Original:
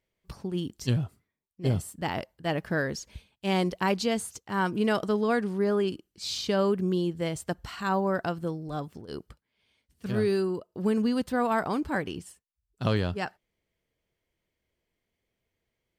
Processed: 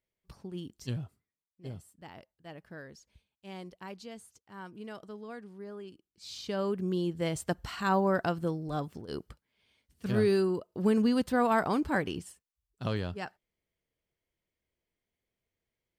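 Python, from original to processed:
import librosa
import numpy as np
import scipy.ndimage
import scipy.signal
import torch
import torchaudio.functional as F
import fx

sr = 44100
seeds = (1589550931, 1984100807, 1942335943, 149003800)

y = fx.gain(x, sr, db=fx.line((1.04, -9.0), (1.9, -18.0), (5.91, -18.0), (6.5, -8.0), (7.4, 0.0), (12.17, 0.0), (12.82, -6.5)))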